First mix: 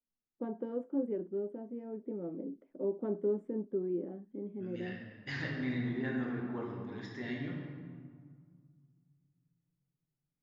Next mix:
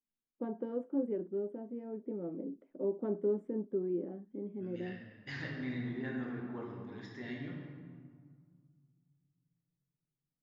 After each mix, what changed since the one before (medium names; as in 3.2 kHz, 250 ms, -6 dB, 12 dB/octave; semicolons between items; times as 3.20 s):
second voice -3.5 dB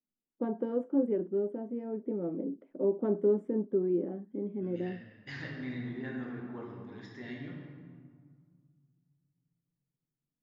first voice +5.5 dB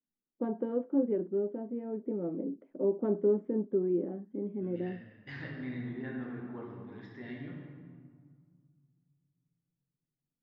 master: add distance through air 200 m